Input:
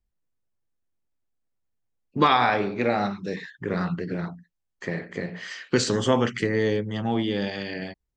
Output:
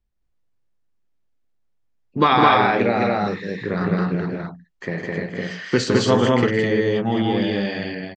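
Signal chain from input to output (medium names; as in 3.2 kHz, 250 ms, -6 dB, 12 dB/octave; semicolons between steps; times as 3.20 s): distance through air 81 m; on a send: loudspeakers at several distances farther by 55 m -7 dB, 72 m -1 dB; on the sum: trim +3 dB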